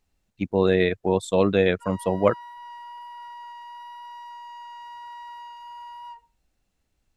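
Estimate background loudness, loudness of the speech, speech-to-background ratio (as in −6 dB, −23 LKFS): −41.0 LKFS, −22.5 LKFS, 18.5 dB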